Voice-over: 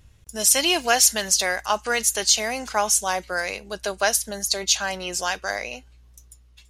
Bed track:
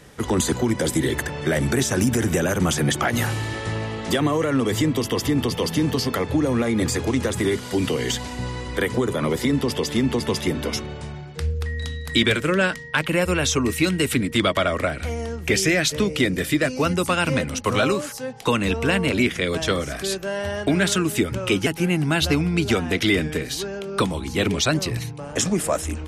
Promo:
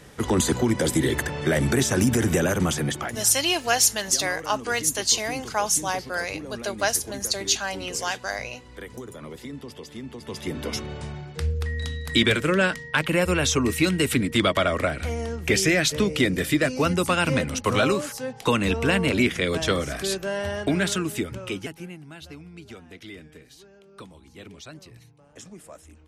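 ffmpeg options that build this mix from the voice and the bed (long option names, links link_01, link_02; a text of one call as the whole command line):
ffmpeg -i stem1.wav -i stem2.wav -filter_complex "[0:a]adelay=2800,volume=-2.5dB[link_01];[1:a]volume=15dB,afade=type=out:start_time=2.45:duration=0.82:silence=0.158489,afade=type=in:start_time=10.2:duration=0.76:silence=0.16788,afade=type=out:start_time=20.32:duration=1.68:silence=0.0891251[link_02];[link_01][link_02]amix=inputs=2:normalize=0" out.wav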